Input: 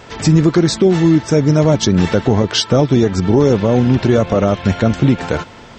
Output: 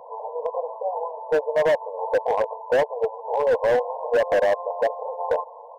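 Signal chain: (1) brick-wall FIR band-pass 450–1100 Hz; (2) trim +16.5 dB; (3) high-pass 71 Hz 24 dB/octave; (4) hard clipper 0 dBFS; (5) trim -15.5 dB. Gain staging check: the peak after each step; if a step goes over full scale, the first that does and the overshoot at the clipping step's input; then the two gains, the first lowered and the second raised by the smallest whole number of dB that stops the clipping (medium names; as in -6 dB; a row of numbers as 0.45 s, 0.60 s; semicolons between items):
-6.5 dBFS, +10.0 dBFS, +10.0 dBFS, 0.0 dBFS, -15.5 dBFS; step 2, 10.0 dB; step 2 +6.5 dB, step 5 -5.5 dB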